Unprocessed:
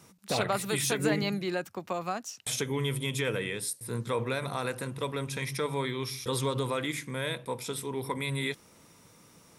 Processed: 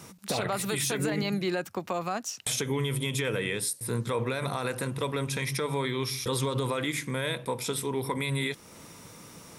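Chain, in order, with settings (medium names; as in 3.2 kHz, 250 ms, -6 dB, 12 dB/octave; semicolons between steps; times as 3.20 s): peak limiter -22.5 dBFS, peak gain reduction 8.5 dB; compression 1.5:1, threshold -45 dBFS, peak gain reduction 6.5 dB; trim +9 dB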